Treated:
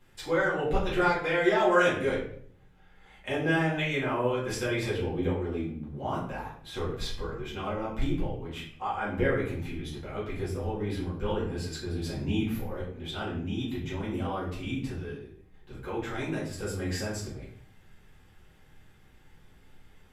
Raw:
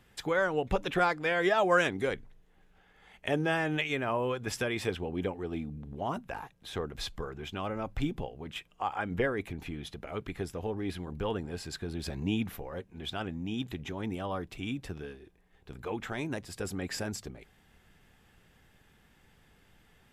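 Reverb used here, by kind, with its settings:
rectangular room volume 88 cubic metres, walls mixed, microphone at 2.2 metres
level −7.5 dB

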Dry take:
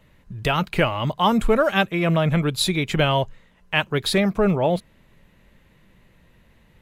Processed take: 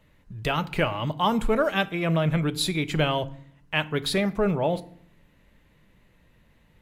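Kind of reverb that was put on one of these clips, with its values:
feedback delay network reverb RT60 0.58 s, low-frequency decay 1.5×, high-frequency decay 0.7×, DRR 13 dB
level −4.5 dB

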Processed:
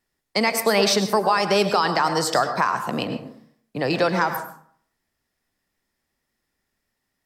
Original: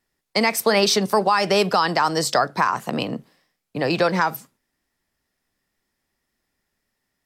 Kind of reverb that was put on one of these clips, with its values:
dense smooth reverb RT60 0.57 s, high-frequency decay 0.5×, pre-delay 90 ms, DRR 8 dB
level −1.5 dB

